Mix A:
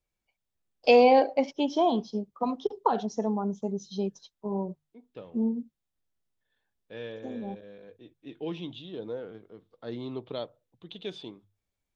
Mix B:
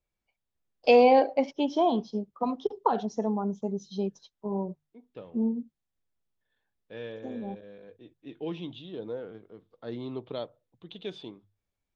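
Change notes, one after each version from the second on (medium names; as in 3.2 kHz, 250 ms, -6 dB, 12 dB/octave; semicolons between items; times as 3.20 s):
master: add treble shelf 5.1 kHz -6.5 dB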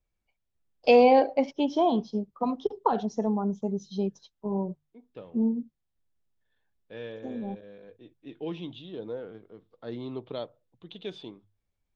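first voice: add bass shelf 140 Hz +7 dB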